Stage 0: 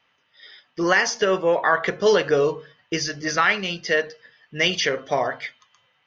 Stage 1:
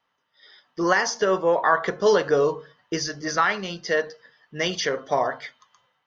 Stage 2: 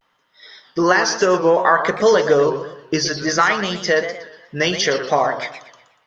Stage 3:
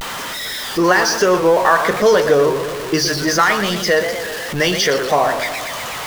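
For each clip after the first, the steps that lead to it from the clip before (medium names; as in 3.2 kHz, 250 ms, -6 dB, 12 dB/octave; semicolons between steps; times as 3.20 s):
level rider; fifteen-band graphic EQ 100 Hz -5 dB, 1 kHz +4 dB, 2.5 kHz -9 dB; trim -7 dB
in parallel at +2.5 dB: compression, threshold -27 dBFS, peak gain reduction 12.5 dB; on the sum: vibrato 0.62 Hz 70 cents; modulated delay 121 ms, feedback 38%, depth 172 cents, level -10.5 dB; trim +2 dB
jump at every zero crossing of -20.5 dBFS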